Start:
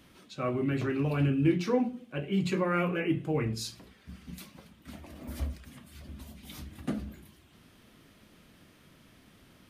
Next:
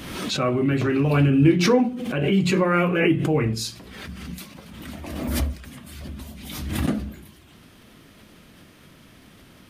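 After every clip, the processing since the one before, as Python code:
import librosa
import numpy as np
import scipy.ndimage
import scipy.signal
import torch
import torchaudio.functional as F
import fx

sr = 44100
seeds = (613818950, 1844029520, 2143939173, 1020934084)

y = fx.pre_swell(x, sr, db_per_s=39.0)
y = y * 10.0 ** (8.0 / 20.0)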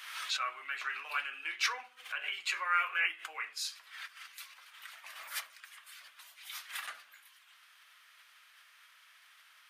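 y = scipy.signal.sosfilt(scipy.signal.butter(4, 1300.0, 'highpass', fs=sr, output='sos'), x)
y = fx.high_shelf(y, sr, hz=2200.0, db=-9.0)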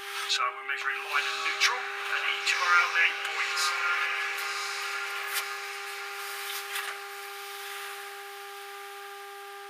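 y = fx.dmg_buzz(x, sr, base_hz=400.0, harmonics=4, level_db=-52.0, tilt_db=-1, odd_only=False)
y = fx.echo_diffused(y, sr, ms=1069, feedback_pct=54, wet_db=-4.0)
y = y * 10.0 ** (7.0 / 20.0)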